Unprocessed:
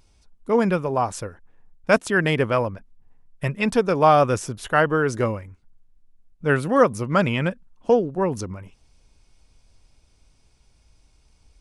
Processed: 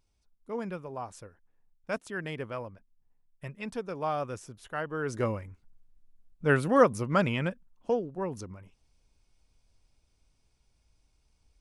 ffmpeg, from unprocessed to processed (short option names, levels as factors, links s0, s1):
-af "volume=0.631,afade=t=in:st=4.9:d=0.53:silence=0.251189,afade=t=out:st=6.75:d=1.23:silence=0.446684"